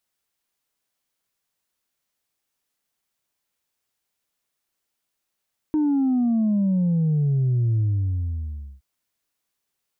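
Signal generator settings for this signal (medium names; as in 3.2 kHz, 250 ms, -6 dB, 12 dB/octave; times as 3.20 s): sub drop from 310 Hz, over 3.07 s, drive 1 dB, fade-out 1.02 s, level -18 dB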